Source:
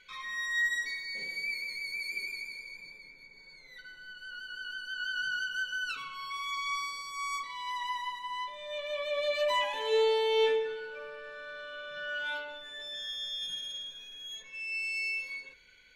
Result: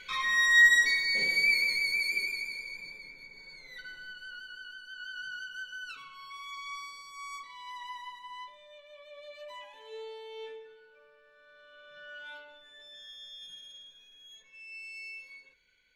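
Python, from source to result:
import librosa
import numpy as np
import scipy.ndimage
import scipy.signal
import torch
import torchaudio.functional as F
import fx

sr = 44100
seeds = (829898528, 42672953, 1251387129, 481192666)

y = fx.gain(x, sr, db=fx.line((1.63, 10.0), (2.35, 4.0), (3.96, 4.0), (4.79, -7.0), (8.43, -7.0), (8.83, -17.0), (11.31, -17.0), (11.94, -10.0)))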